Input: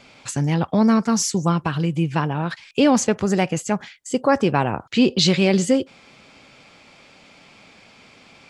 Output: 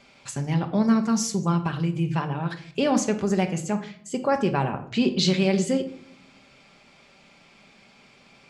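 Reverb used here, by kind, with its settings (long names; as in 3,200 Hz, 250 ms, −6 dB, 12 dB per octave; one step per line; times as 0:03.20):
rectangular room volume 1,000 cubic metres, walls furnished, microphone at 1.2 metres
level −6.5 dB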